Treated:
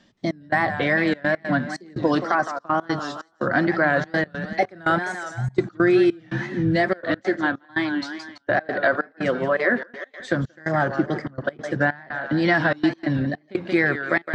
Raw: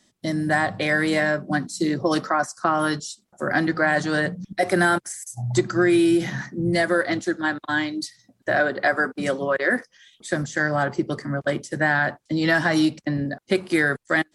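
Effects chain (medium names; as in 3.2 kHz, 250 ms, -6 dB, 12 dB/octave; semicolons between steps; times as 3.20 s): distance through air 180 m; thinning echo 169 ms, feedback 51%, high-pass 330 Hz, level -10 dB; in parallel at -1 dB: compression, threshold -32 dBFS, peak gain reduction 16.5 dB; on the sum: trance gate "xxx..xxxxxx.x." 145 bpm -24 dB; reverse; upward compressor, threshold -30 dBFS; reverse; wow and flutter 110 cents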